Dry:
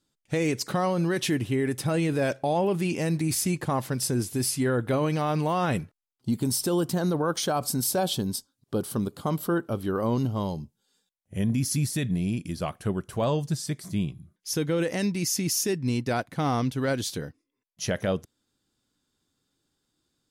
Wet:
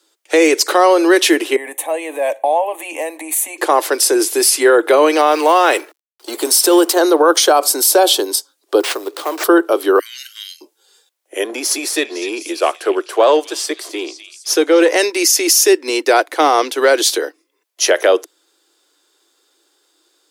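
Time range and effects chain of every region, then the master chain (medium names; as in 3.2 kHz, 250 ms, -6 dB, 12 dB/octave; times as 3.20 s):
1.56–3.58 s: compression 3:1, threshold -26 dBFS + peaking EQ 3.2 kHz -8 dB 1.6 oct + static phaser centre 1.4 kHz, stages 6
5.31–6.96 s: companding laws mixed up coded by mu + bass shelf 440 Hz -4.5 dB
8.80–9.44 s: compression 3:1, threshold -31 dBFS + sample-rate reducer 13 kHz + overload inside the chain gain 28.5 dB
9.99–10.61 s: steep high-pass 1.6 kHz 72 dB/octave + band-stop 4.8 kHz, Q 13
11.44–14.96 s: partial rectifier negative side -3 dB + treble shelf 7.9 kHz -8 dB + repeats whose band climbs or falls 254 ms, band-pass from 3 kHz, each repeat 0.7 oct, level -9.5 dB
whole clip: steep high-pass 320 Hz 72 dB/octave; loudness maximiser +19 dB; trim -1 dB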